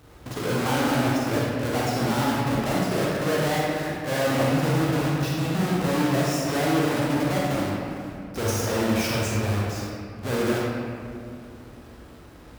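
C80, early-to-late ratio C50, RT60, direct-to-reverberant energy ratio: 0.0 dB, -2.5 dB, 2.3 s, -5.5 dB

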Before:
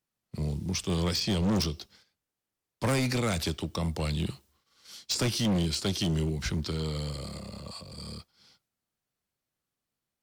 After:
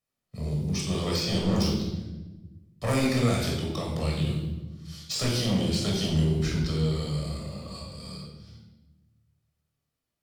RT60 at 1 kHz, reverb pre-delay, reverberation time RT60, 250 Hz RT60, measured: 0.95 s, 17 ms, 1.1 s, 1.8 s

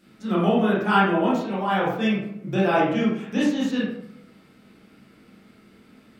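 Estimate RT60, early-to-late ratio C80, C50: 0.75 s, 5.0 dB, 1.0 dB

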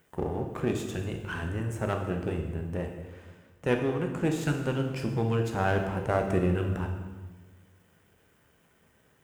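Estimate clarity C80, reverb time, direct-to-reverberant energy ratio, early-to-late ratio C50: 8.0 dB, 1.3 s, 3.0 dB, 6.0 dB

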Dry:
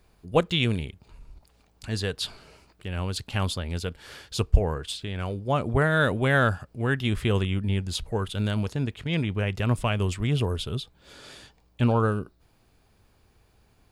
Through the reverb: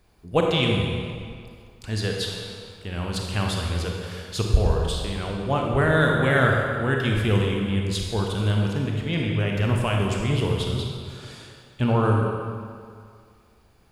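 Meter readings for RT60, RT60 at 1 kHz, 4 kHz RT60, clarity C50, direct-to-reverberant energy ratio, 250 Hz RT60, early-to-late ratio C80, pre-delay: 2.1 s, 2.2 s, 1.6 s, 1.0 dB, -0.5 dB, 2.0 s, 2.5 dB, 30 ms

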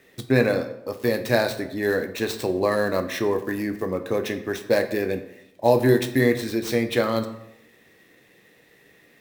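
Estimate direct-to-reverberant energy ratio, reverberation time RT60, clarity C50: 7.5 dB, 0.80 s, 11.5 dB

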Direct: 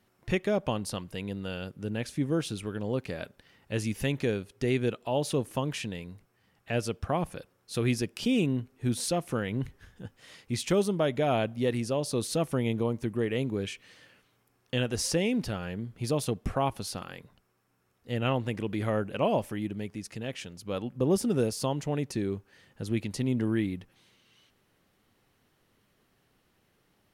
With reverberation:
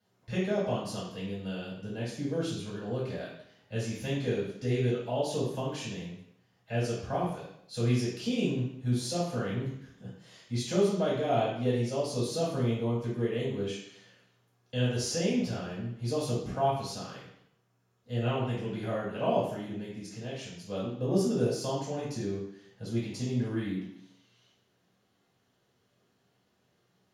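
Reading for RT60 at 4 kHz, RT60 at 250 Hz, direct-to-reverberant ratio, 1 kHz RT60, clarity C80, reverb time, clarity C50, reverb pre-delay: 0.70 s, 0.75 s, -10.5 dB, 0.70 s, 5.5 dB, 0.70 s, 2.0 dB, 3 ms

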